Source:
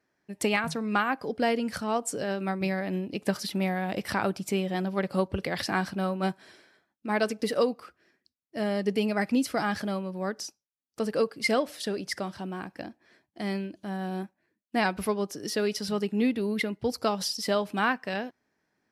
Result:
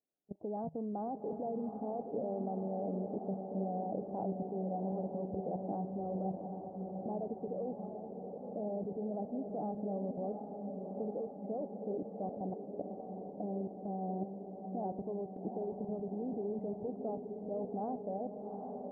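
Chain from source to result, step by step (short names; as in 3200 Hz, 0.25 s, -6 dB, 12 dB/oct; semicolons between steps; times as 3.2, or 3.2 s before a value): Chebyshev low-pass 780 Hz, order 5; bell 71 Hz -14.5 dB 1.7 oct; notch 360 Hz, Q 12; level quantiser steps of 20 dB; on a send: diffused feedback echo 0.777 s, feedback 69%, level -6 dB; on the sum: gain +2 dB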